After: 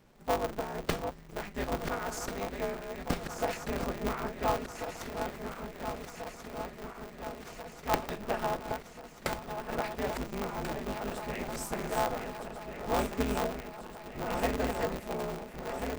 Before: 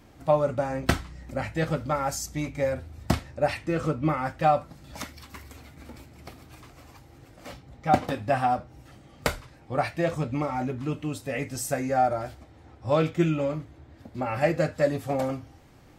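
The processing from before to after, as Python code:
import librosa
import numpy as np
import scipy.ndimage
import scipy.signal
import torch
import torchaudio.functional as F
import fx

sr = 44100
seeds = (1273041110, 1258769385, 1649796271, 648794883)

y = fx.reverse_delay_fb(x, sr, ms=694, feedback_pct=82, wet_db=-7)
y = y * np.sign(np.sin(2.0 * np.pi * 100.0 * np.arange(len(y)) / sr))
y = y * 10.0 ** (-8.5 / 20.0)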